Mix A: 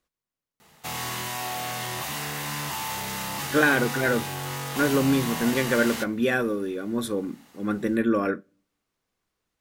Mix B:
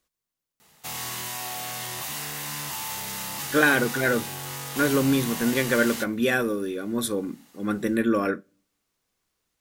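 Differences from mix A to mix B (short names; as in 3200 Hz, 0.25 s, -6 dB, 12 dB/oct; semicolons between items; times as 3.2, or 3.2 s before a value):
background -5.0 dB; master: add high shelf 3800 Hz +8 dB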